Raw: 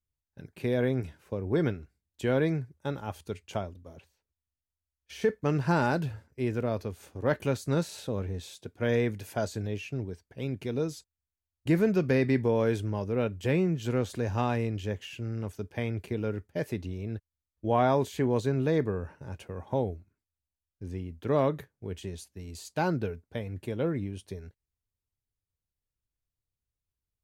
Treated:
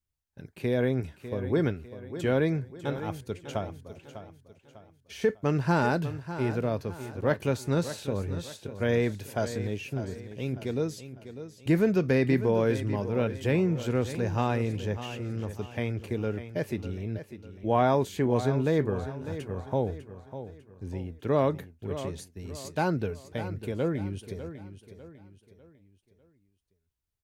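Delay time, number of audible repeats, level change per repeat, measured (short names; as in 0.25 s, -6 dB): 0.599 s, 3, -8.0 dB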